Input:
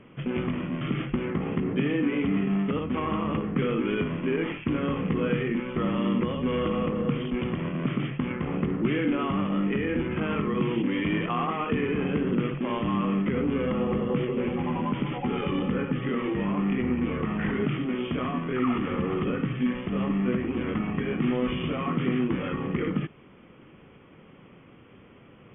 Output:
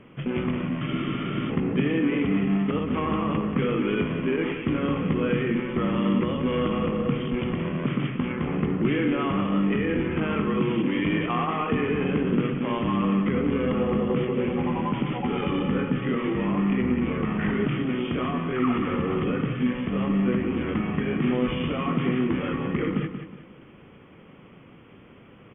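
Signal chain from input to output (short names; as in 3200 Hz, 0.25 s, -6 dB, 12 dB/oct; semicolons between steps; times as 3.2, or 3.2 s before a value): feedback echo 0.182 s, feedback 36%, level -9 dB; spectral freeze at 0.89, 0.60 s; gain +1.5 dB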